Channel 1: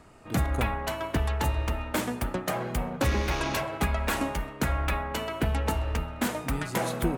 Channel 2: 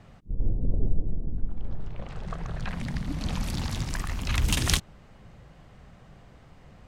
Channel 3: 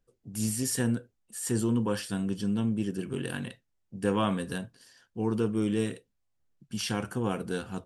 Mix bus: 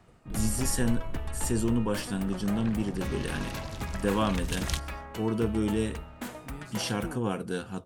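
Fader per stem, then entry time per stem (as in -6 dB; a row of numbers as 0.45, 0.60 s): -10.0, -8.5, 0.0 dB; 0.00, 0.00, 0.00 s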